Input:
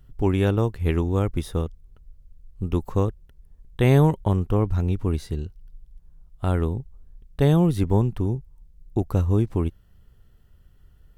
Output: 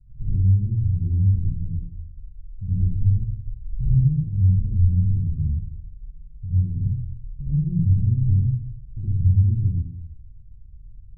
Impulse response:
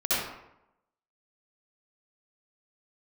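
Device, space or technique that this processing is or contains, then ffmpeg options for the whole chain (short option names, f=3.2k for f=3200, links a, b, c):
club heard from the street: -filter_complex "[0:a]asettb=1/sr,asplit=3[a][b][c];[a]atrim=end=2.834[d];[b]atrim=start=2.83:end=3.85,asetpts=PTS-STARTPTS,afade=t=in:d=0.004:c=qsin,afade=t=out:st=1.016:d=0.004:c=qsin,asubboost=boost=8:cutoff=170[e];[c]atrim=start=3.846[f];[d][e]acrossfade=d=0.004:c1=hsin:c2=qsin[g];[g][f]acrossfade=d=0.004:c1=qsin:c2=hsin,alimiter=limit=-16.5dB:level=0:latency=1,lowpass=f=140:w=0.5412,lowpass=f=140:w=1.3066[h];[1:a]atrim=start_sample=2205[i];[h][i]afir=irnorm=-1:irlink=0"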